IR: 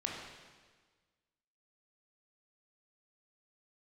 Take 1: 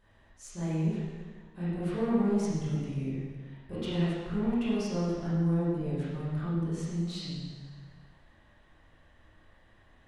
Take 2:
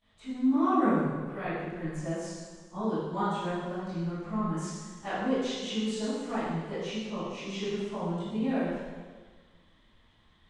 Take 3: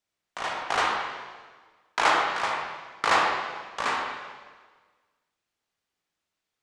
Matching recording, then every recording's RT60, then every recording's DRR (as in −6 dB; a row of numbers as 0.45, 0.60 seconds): 3; 1.5, 1.5, 1.5 seconds; −11.0, −21.0, −1.5 decibels